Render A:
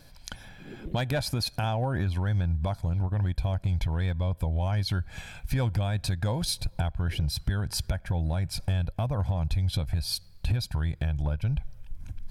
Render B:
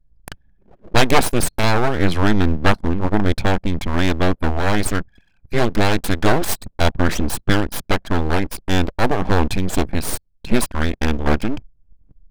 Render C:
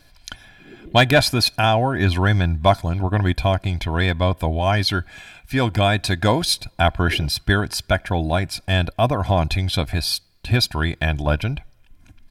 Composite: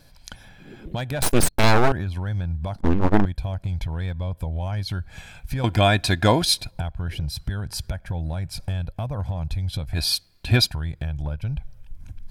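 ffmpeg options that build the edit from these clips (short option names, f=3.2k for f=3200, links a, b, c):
-filter_complex "[1:a]asplit=2[a][b];[2:a]asplit=2[c][d];[0:a]asplit=5[e][f][g][h][i];[e]atrim=end=1.222[j];[a]atrim=start=1.218:end=1.922[k];[f]atrim=start=1.918:end=2.752[l];[b]atrim=start=2.748:end=3.252[m];[g]atrim=start=3.248:end=5.642[n];[c]atrim=start=5.638:end=6.712[o];[h]atrim=start=6.708:end=10.02[p];[d]atrim=start=9.92:end=10.76[q];[i]atrim=start=10.66[r];[j][k]acrossfade=d=0.004:c1=hsin:c2=hsin[s];[s][l]acrossfade=d=0.004:c1=hsin:c2=hsin[t];[t][m]acrossfade=d=0.004:c1=hsin:c2=hsin[u];[u][n]acrossfade=d=0.004:c1=hsin:c2=hsin[v];[v][o]acrossfade=d=0.004:c1=hsin:c2=hsin[w];[w][p]acrossfade=d=0.004:c1=hsin:c2=hsin[x];[x][q]acrossfade=d=0.1:c1=tri:c2=tri[y];[y][r]acrossfade=d=0.1:c1=tri:c2=tri"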